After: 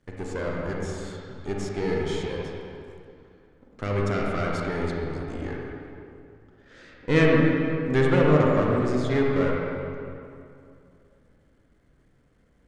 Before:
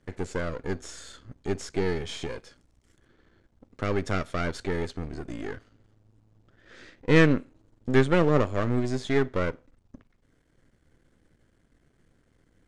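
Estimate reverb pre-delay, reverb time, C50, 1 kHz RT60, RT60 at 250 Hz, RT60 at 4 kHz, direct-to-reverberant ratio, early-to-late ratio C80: 37 ms, 2.5 s, -2.0 dB, 2.5 s, 2.6 s, 1.8 s, -3.0 dB, -0.5 dB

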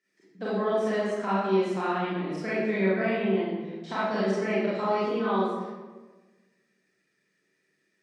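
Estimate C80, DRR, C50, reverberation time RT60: 0.5 dB, -10.5 dB, -3.5 dB, 1.3 s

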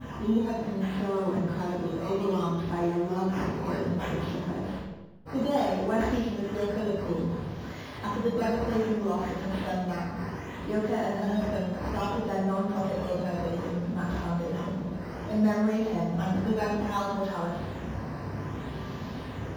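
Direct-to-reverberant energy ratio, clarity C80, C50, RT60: -20.5 dB, 2.5 dB, -1.0 dB, 1.1 s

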